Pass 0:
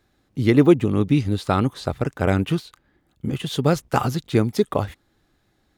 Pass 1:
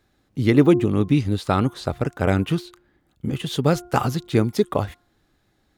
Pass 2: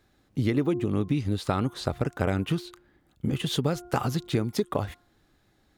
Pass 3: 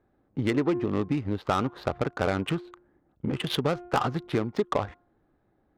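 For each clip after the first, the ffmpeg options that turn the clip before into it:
-af "bandreject=f=353.8:t=h:w=4,bandreject=f=707.6:t=h:w=4,bandreject=f=1.0614k:t=h:w=4,bandreject=f=1.4152k:t=h:w=4"
-af "acompressor=threshold=-22dB:ratio=6"
-filter_complex "[0:a]asplit=2[a][b];[b]highpass=f=720:p=1,volume=12dB,asoftclip=type=tanh:threshold=-10.5dB[c];[a][c]amix=inputs=2:normalize=0,lowpass=f=7.4k:p=1,volume=-6dB,adynamicsmooth=sensitivity=2:basefreq=740"

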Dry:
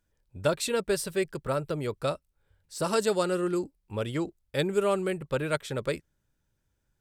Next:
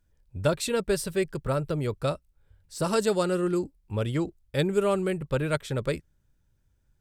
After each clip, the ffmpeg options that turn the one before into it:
-af "lowshelf=f=160:g=10"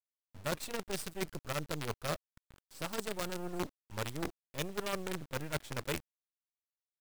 -af "areverse,acompressor=threshold=-34dB:ratio=8,areverse,acrusher=bits=6:dc=4:mix=0:aa=0.000001"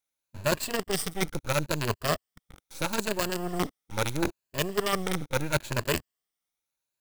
-af "afftfilt=real='re*pow(10,8/40*sin(2*PI*(1.4*log(max(b,1)*sr/1024/100)/log(2)-(0.76)*(pts-256)/sr)))':imag='im*pow(10,8/40*sin(2*PI*(1.4*log(max(b,1)*sr/1024/100)/log(2)-(0.76)*(pts-256)/sr)))':win_size=1024:overlap=0.75,volume=8.5dB"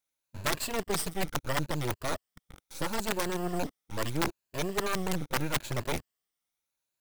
-af "aeval=exprs='(mod(8.41*val(0)+1,2)-1)/8.41':c=same"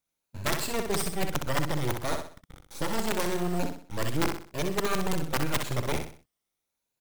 -filter_complex "[0:a]asplit=2[a][b];[b]acrusher=samples=21:mix=1:aa=0.000001:lfo=1:lforange=12.6:lforate=0.33,volume=-11dB[c];[a][c]amix=inputs=2:normalize=0,aecho=1:1:63|126|189|252:0.501|0.185|0.0686|0.0254"

